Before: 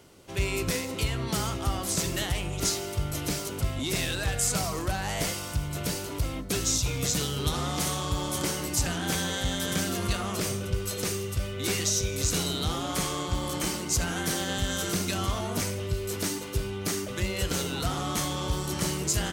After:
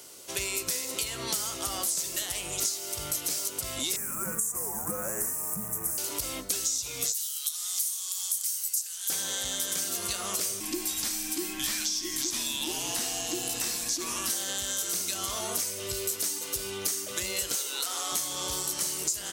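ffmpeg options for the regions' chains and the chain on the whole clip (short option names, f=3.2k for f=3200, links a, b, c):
-filter_complex "[0:a]asettb=1/sr,asplit=3[a][b][c];[a]atrim=end=3.964[d];[b]atrim=start=3.96:end=5.98,asetpts=PTS-STARTPTS,afade=t=in:d=0.004:c=qsin,afade=t=out:st=2.016:d=0.004:c=qsin,afreqshift=-260,acrusher=bits=8:dc=4:mix=0:aa=0.000001,asuperstop=centerf=3700:order=4:qfactor=0.5[e];[c]atrim=start=5.976[f];[d][e]acrossfade=d=0.004:c1=hsin:c2=qsin[g];[g][f]acrossfade=d=0.004:c1=qsin:c2=hsin,asettb=1/sr,asplit=3[h][i][j];[h]atrim=end=7.124[k];[i]atrim=start=7.12:end=9.1,asetpts=PTS-STARTPTS,afade=t=in:d=0.004:c=qsin,afade=t=out:st=1.976:d=0.004:c=qsin,highpass=880,aderivative[l];[j]atrim=start=9.096[m];[k][l]acrossfade=d=0.004:c1=hsin:c2=qsin[n];[n][m]acrossfade=d=0.004:c1=qsin:c2=hsin,asettb=1/sr,asplit=3[o][p][q];[o]atrim=end=10.604[r];[p]atrim=start=10.6:end=14.3,asetpts=PTS-STARTPTS,afade=t=in:d=0.004:c=qsin,afade=t=out:st=3.696:d=0.004:c=qsin,highshelf=f=8.5k:g=6.5,acrossover=split=5000[s][t];[t]acompressor=threshold=-39dB:ratio=4:attack=1:release=60[u];[s][u]amix=inputs=2:normalize=0,afreqshift=-410[v];[q]atrim=start=14.296[w];[r][v]acrossfade=d=0.004:c1=hsin:c2=qsin[x];[x][w]acrossfade=d=0.004:c1=qsin:c2=hsin,asettb=1/sr,asplit=3[y][z][aa];[y]atrim=end=17.554[ab];[z]atrim=start=17.55:end=18.12,asetpts=PTS-STARTPTS,afade=t=in:d=0.004:c=qsin,afade=t=out:st=0.566:d=0.004:c=qsin,highpass=450,bandreject=f=680:w=9.9[ac];[aa]atrim=start=18.116[ad];[ab][ac]acrossfade=d=0.004:c1=hsin:c2=qsin[ae];[ae][ad]acrossfade=d=0.004:c1=qsin:c2=hsin,bass=f=250:g=-14,treble=f=4k:g=14,bandreject=f=810:w=17,acompressor=threshold=-30dB:ratio=6,volume=2dB"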